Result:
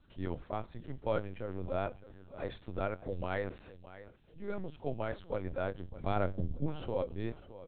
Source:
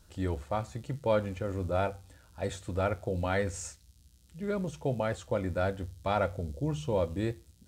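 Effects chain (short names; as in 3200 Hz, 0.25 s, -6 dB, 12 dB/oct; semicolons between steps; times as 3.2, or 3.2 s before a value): 5.92–6.67 low shelf 200 Hz +10.5 dB; feedback echo 0.608 s, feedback 29%, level -16 dB; LPC vocoder at 8 kHz pitch kept; gain -5.5 dB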